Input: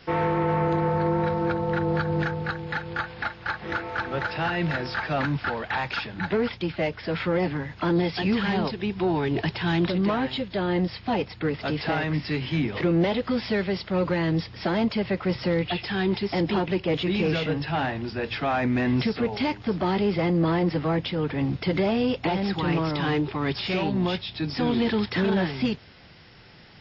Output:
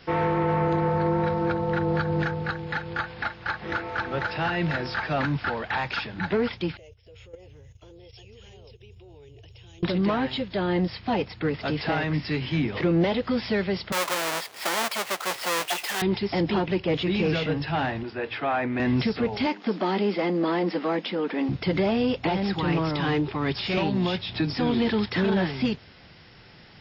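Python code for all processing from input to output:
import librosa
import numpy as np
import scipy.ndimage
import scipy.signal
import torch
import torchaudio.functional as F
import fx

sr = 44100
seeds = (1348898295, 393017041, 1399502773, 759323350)

y = fx.chain(x, sr, fx.curve_eq(hz=(110.0, 170.0, 290.0, 470.0, 670.0, 990.0, 1700.0, 2900.0, 4600.0, 6500.0), db=(0, -30, -26, -9, -20, -27, -28, -10, -20, 8)),
    fx.level_steps(step_db=12), at=(6.77, 9.83))
y = fx.chain(y, sr, fx.halfwave_hold(),
    fx.highpass(hz=700.0, slope=12), at=(13.92, 16.02))
y = fx.chain(y, sr, fx.bandpass_edges(low_hz=150.0, high_hz=3100.0),
    fx.peak_eq(hz=190.0, db=-11.0, octaves=0.57), at=(18.03, 18.8))
y = fx.chain(y, sr, fx.brickwall_highpass(low_hz=180.0),
    fx.band_squash(depth_pct=40), at=(19.46, 21.49))
y = fx.chain(y, sr, fx.peak_eq(hz=61.0, db=-5.5, octaves=0.4),
    fx.band_squash(depth_pct=100), at=(23.77, 24.53))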